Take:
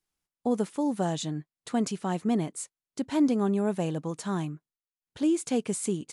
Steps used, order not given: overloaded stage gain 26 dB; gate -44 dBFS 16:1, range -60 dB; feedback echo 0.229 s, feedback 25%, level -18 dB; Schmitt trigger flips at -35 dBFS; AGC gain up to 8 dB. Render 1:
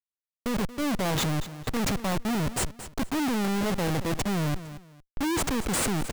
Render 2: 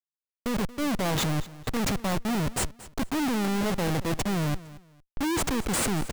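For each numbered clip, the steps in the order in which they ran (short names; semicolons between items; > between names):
Schmitt trigger > gate > AGC > feedback echo > overloaded stage; Schmitt trigger > gate > AGC > overloaded stage > feedback echo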